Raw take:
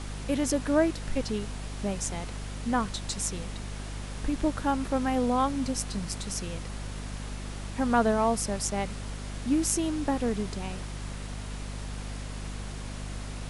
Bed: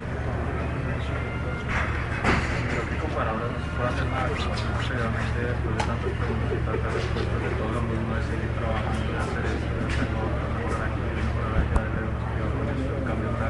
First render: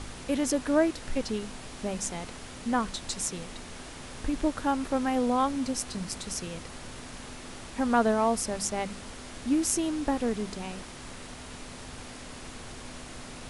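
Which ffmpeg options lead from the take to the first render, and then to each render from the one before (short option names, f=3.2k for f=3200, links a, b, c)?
-af "bandreject=f=50:t=h:w=4,bandreject=f=100:t=h:w=4,bandreject=f=150:t=h:w=4,bandreject=f=200:t=h:w=4"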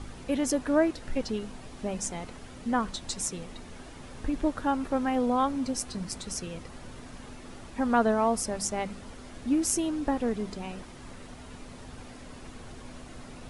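-af "afftdn=nr=8:nf=-44"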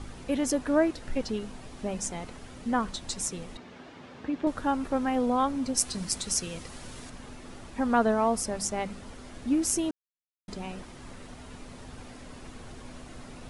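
-filter_complex "[0:a]asettb=1/sr,asplit=3[a][b][c];[a]atrim=end=3.574[d];[b]atrim=start=3.57:end=4.47,asetpts=PTS-STARTPTS,afade=t=in:d=0.004:c=qsin,afade=t=out:st=0.896:d=0.004:c=qsin,highpass=150,lowpass=4k[e];[c]atrim=start=4.466[f];[d][e]acrossfade=d=0.004:c1=hsin:c2=qsin[g];[g][f]acrossfade=d=0.004:c1=qsin:c2=hsin,asettb=1/sr,asplit=3[h][i][j];[h]atrim=end=5.774[k];[i]atrim=start=5.77:end=7.1,asetpts=PTS-STARTPTS,afade=t=in:d=0.004:c=qsin,afade=t=out:st=1.326:d=0.004:c=qsin,highshelf=f=2.9k:g=9[l];[j]atrim=start=7.096[m];[k][l]acrossfade=d=0.004:c1=hsin:c2=qsin[n];[n][m]acrossfade=d=0.004:c1=qsin:c2=hsin,asplit=3[o][p][q];[o]atrim=end=9.91,asetpts=PTS-STARTPTS,afade=t=out:st=9.906:d=0.004:c=hsin[r];[p]atrim=start=9.91:end=10.48,asetpts=PTS-STARTPTS,volume=0[s];[q]atrim=start=10.48,asetpts=PTS-STARTPTS,afade=t=in:d=0.004:c=hsin[t];[r][s][t]concat=n=3:v=0:a=1"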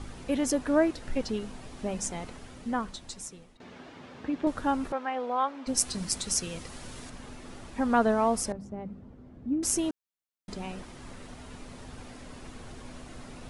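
-filter_complex "[0:a]asettb=1/sr,asplit=3[a][b][c];[a]atrim=end=4.924[d];[b]atrim=start=4.92:end=5.67,asetpts=PTS-STARTPTS,afade=t=in:d=0.004:c=qsin,afade=t=out:st=0.746:d=0.004:c=qsin,highpass=550,lowpass=3.3k[e];[c]atrim=start=5.666[f];[d][e]acrossfade=d=0.004:c1=hsin:c2=qsin[g];[g][f]acrossfade=d=0.004:c1=qsin:c2=hsin,asettb=1/sr,asplit=3[h][i][j];[h]atrim=end=8.524[k];[i]atrim=start=8.52:end=9.63,asetpts=PTS-STARTPTS,afade=t=in:d=0.004:c=qsin,afade=t=out:st=1.106:d=0.004:c=qsin,bandpass=f=140:t=q:w=0.7[l];[j]atrim=start=9.626[m];[k][l]acrossfade=d=0.004:c1=hsin:c2=qsin[n];[n][m]acrossfade=d=0.004:c1=qsin:c2=hsin,asplit=2[o][p];[o]atrim=end=3.6,asetpts=PTS-STARTPTS,afade=t=out:st=2.28:d=1.32:silence=0.11885[q];[p]atrim=start=3.6,asetpts=PTS-STARTPTS,afade=t=in:d=0.004:c=hsin:silence=0.11885[r];[q][r]concat=n=2:v=0:a=1"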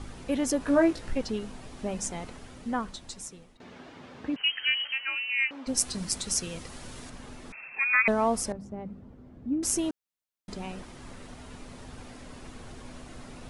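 -filter_complex "[0:a]asettb=1/sr,asplit=3[a][b][c];[a]atrim=end=0.594[d];[b]atrim=start=0.59:end=1.13,asetpts=PTS-STARTPTS,afade=t=in:d=0.004:c=qsin,afade=t=out:st=0.536:d=0.004:c=qsin,asplit=2[e][f];[f]adelay=18,volume=-3dB[g];[e][g]amix=inputs=2:normalize=0,atrim=end_sample=23814[h];[c]atrim=start=1.126[i];[d][h]acrossfade=d=0.004:c1=hsin:c2=qsin[j];[j][i]acrossfade=d=0.004:c1=qsin:c2=hsin,asettb=1/sr,asplit=3[k][l][m];[k]atrim=end=4.364[n];[l]atrim=start=4.36:end=5.51,asetpts=PTS-STARTPTS,afade=t=in:d=0.004:c=qsin,afade=t=out:st=1.146:d=0.004:c=qsin,lowpass=f=2.7k:t=q:w=0.5098,lowpass=f=2.7k:t=q:w=0.6013,lowpass=f=2.7k:t=q:w=0.9,lowpass=f=2.7k:t=q:w=2.563,afreqshift=-3200[o];[m]atrim=start=5.506[p];[n][o]acrossfade=d=0.004:c1=hsin:c2=qsin[q];[q][p]acrossfade=d=0.004:c1=qsin:c2=hsin,asettb=1/sr,asplit=3[r][s][t];[r]atrim=end=7.524[u];[s]atrim=start=7.52:end=8.08,asetpts=PTS-STARTPTS,afade=t=in:d=0.004:c=qsin,afade=t=out:st=0.556:d=0.004:c=qsin,lowpass=f=2.3k:t=q:w=0.5098,lowpass=f=2.3k:t=q:w=0.6013,lowpass=f=2.3k:t=q:w=0.9,lowpass=f=2.3k:t=q:w=2.563,afreqshift=-2700[v];[t]atrim=start=8.076[w];[u][v]acrossfade=d=0.004:c1=hsin:c2=qsin[x];[x][w]acrossfade=d=0.004:c1=qsin:c2=hsin"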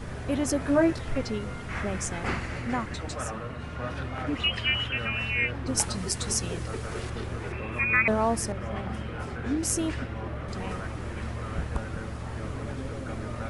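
-filter_complex "[1:a]volume=-8dB[a];[0:a][a]amix=inputs=2:normalize=0"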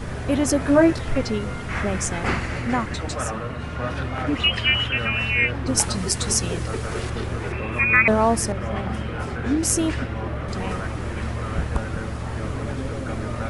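-af "volume=6.5dB,alimiter=limit=-1dB:level=0:latency=1"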